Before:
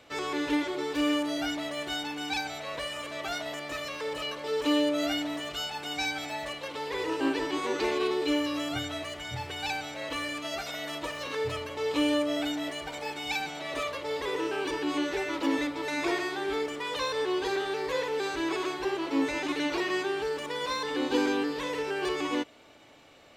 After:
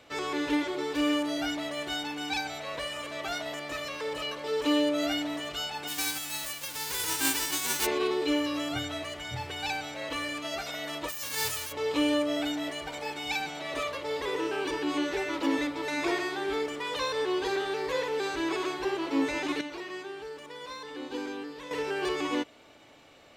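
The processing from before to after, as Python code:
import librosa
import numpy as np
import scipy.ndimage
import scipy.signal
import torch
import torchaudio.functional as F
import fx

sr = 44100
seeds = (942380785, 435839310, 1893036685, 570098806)

y = fx.envelope_flatten(x, sr, power=0.1, at=(5.87, 7.85), fade=0.02)
y = fx.envelope_flatten(y, sr, power=0.1, at=(11.08, 11.71), fade=0.02)
y = fx.edit(y, sr, fx.clip_gain(start_s=19.61, length_s=2.1, db=-9.5), tone=tone)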